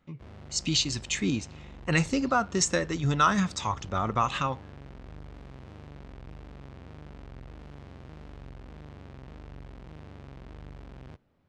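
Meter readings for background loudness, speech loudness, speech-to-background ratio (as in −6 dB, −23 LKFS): −47.0 LKFS, −27.5 LKFS, 19.5 dB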